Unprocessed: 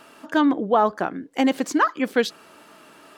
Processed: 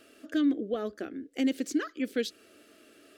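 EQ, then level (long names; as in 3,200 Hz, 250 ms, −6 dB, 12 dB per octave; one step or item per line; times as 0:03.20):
parametric band 120 Hz +6.5 dB 2.9 octaves
dynamic equaliser 790 Hz, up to −8 dB, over −31 dBFS, Q 0.81
phaser with its sweep stopped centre 390 Hz, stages 4
−6.5 dB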